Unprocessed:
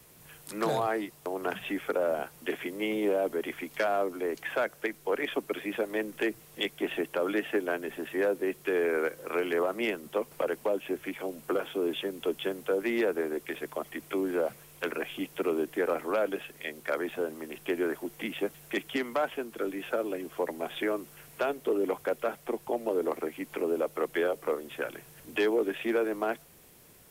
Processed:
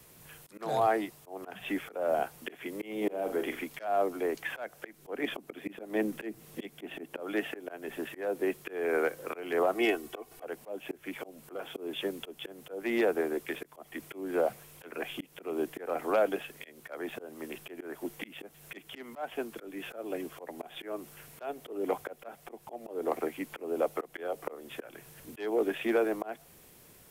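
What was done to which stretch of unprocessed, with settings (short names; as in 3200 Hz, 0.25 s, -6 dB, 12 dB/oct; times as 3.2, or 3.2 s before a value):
2.97–3.64 flutter echo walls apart 7.2 m, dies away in 0.32 s
4.98–7.2 bell 240 Hz +8.5 dB 1.3 oct
9.75–10.44 comb 2.7 ms, depth 73%
whole clip: dynamic EQ 730 Hz, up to +7 dB, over -46 dBFS, Q 3.9; auto swell 0.266 s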